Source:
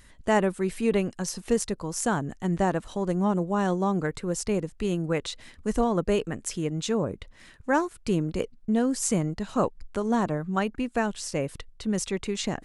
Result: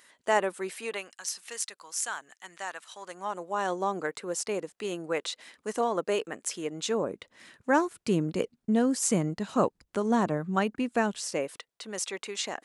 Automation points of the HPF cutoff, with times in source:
0.66 s 490 Hz
1.19 s 1500 Hz
2.88 s 1500 Hz
3.77 s 430 Hz
6.57 s 430 Hz
7.84 s 150 Hz
11.12 s 150 Hz
11.58 s 570 Hz

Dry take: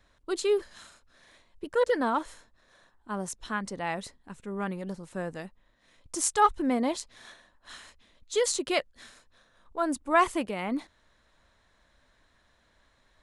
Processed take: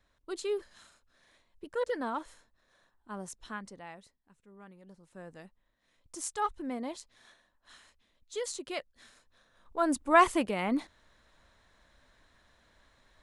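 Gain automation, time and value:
3.5 s -7.5 dB
4.16 s -20 dB
4.73 s -20 dB
5.44 s -10 dB
8.76 s -10 dB
9.93 s +1 dB

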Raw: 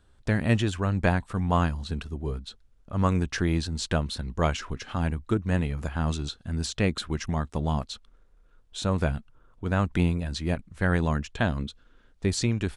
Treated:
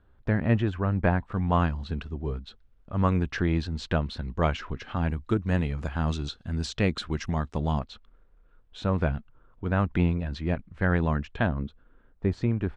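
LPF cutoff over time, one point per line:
1900 Hz
from 1.32 s 3300 Hz
from 5.09 s 5300 Hz
from 7.79 s 2700 Hz
from 11.47 s 1500 Hz

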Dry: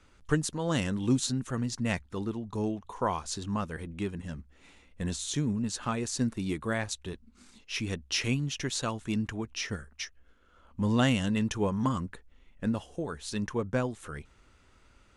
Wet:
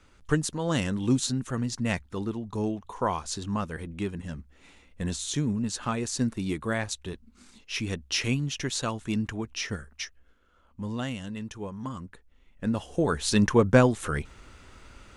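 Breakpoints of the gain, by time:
10.03 s +2 dB
11.05 s -8 dB
11.8 s -8 dB
12.66 s +1 dB
13.08 s +11 dB

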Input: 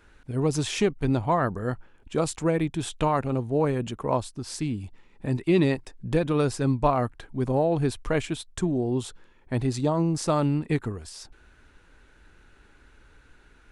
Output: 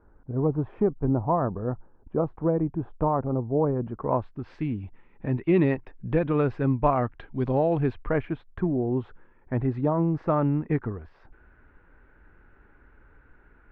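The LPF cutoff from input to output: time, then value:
LPF 24 dB/oct
3.71 s 1100 Hz
4.46 s 2400 Hz
6.94 s 2400 Hz
7.48 s 3800 Hz
8.14 s 1900 Hz

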